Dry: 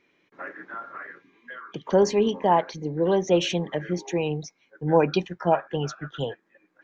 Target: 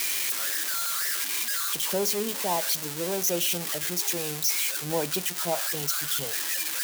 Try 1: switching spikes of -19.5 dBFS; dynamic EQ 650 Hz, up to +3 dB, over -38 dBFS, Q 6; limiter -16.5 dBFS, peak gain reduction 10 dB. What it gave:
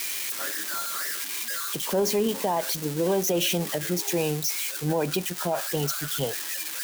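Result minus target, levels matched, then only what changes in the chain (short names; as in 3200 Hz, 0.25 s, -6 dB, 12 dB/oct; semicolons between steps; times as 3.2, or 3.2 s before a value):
switching spikes: distortion -12 dB
change: switching spikes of -7.5 dBFS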